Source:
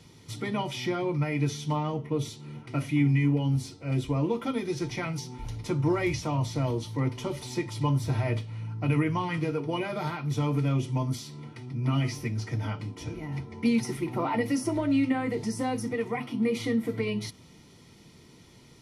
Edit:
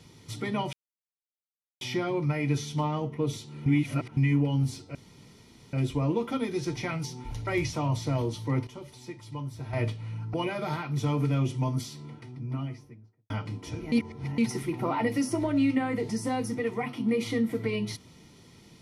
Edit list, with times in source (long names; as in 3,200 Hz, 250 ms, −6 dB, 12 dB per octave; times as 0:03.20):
0:00.73: splice in silence 1.08 s
0:02.58–0:03.09: reverse
0:03.87: splice in room tone 0.78 s
0:05.61–0:05.96: remove
0:07.16–0:08.22: clip gain −10.5 dB
0:08.83–0:09.68: remove
0:11.14–0:12.64: fade out and dull
0:13.26–0:13.72: reverse